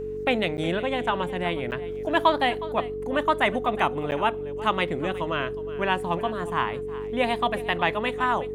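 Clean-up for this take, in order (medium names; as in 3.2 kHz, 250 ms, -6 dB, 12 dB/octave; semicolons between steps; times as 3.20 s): de-hum 48.3 Hz, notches 7; band-stop 430 Hz, Q 30; interpolate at 0.57/1.71/4.11 s, 9.5 ms; inverse comb 364 ms -17 dB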